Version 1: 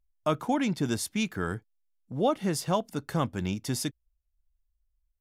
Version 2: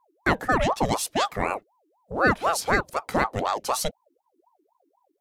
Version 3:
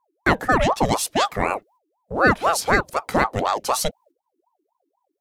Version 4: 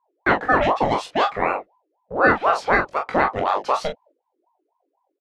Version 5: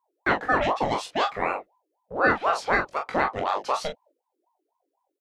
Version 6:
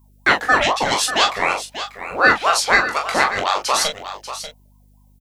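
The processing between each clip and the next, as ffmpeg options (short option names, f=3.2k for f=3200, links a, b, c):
-af "aeval=exprs='val(0)*sin(2*PI*660*n/s+660*0.55/4*sin(2*PI*4*n/s))':c=same,volume=7.5dB"
-af "agate=range=-9dB:threshold=-54dB:ratio=16:detection=peak,volume=4dB"
-filter_complex "[0:a]lowpass=5.1k,bass=f=250:g=-8,treble=f=4k:g=-12,asplit=2[a][b];[b]aecho=0:1:22|42:0.531|0.398[c];[a][c]amix=inputs=2:normalize=0"
-af "highshelf=f=3.8k:g=8,volume=-5.5dB"
-af "aecho=1:1:590:0.266,crystalizer=i=9:c=0,aeval=exprs='val(0)+0.00224*(sin(2*PI*50*n/s)+sin(2*PI*2*50*n/s)/2+sin(2*PI*3*50*n/s)/3+sin(2*PI*4*50*n/s)/4+sin(2*PI*5*50*n/s)/5)':c=same,volume=1.5dB"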